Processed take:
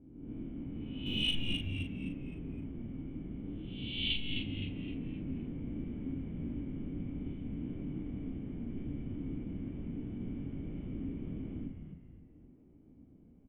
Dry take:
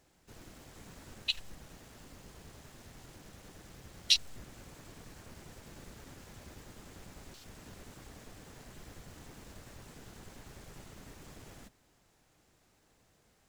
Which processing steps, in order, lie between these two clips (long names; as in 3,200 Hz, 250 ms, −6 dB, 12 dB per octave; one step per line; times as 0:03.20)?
peak hold with a rise ahead of every peak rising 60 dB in 1.01 s
low-pass that shuts in the quiet parts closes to 1,000 Hz, open at −33.5 dBFS
formant resonators in series i
0:01.06–0:01.56: leveller curve on the samples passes 1
high shelf with overshoot 1,800 Hz −6 dB, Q 1.5
double-tracking delay 38 ms −5.5 dB
echo with shifted repeats 259 ms, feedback 42%, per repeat −96 Hz, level −6 dB
level +16.5 dB